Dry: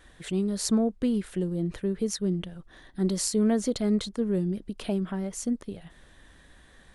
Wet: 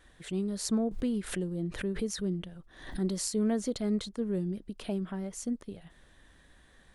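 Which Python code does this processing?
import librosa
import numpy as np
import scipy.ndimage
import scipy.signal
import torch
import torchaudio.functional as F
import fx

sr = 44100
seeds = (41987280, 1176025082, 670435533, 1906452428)

y = fx.pre_swell(x, sr, db_per_s=97.0, at=(0.91, 3.19))
y = F.gain(torch.from_numpy(y), -5.0).numpy()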